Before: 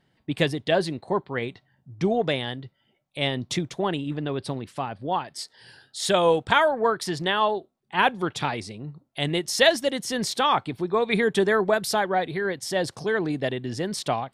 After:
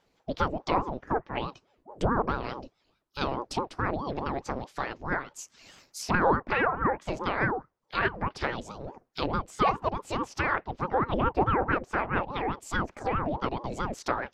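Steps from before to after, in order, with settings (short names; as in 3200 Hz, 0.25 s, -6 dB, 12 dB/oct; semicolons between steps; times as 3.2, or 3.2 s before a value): formant shift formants +6 st; treble ducked by the level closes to 1300 Hz, closed at -21 dBFS; ring modulator with a swept carrier 430 Hz, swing 70%, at 4.7 Hz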